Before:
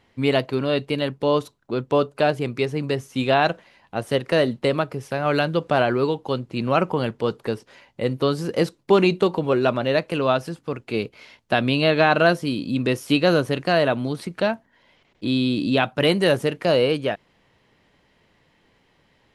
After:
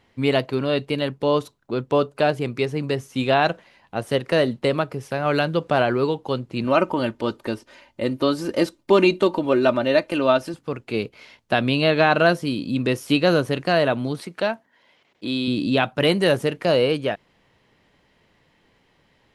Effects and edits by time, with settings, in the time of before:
6.64–10.54 s: comb 3.3 ms, depth 59%
14.19–15.48 s: high-pass 310 Hz 6 dB/octave

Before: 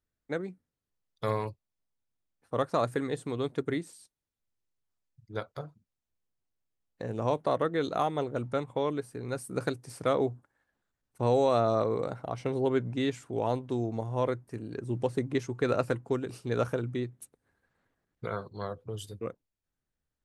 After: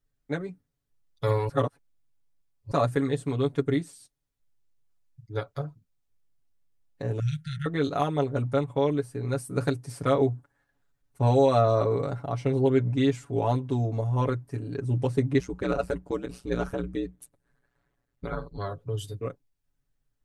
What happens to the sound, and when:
1.49–2.71 s: reverse
7.19–7.66 s: brick-wall FIR band-stop 200–1300 Hz
15.39–18.58 s: ring modulator 61 Hz
whole clip: bass shelf 110 Hz +11 dB; comb 7.1 ms, depth 87%

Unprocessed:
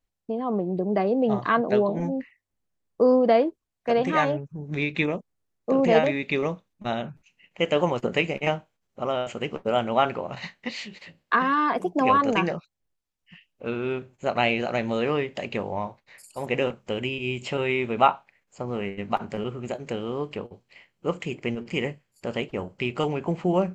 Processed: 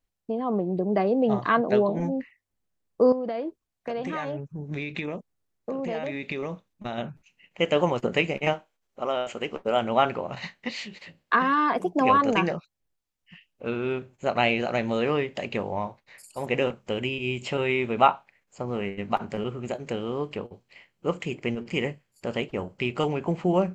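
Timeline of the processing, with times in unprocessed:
3.12–6.98 s: compression, threshold -27 dBFS
8.52–9.81 s: peaking EQ 130 Hz -15 dB -> -7 dB 1.3 oct

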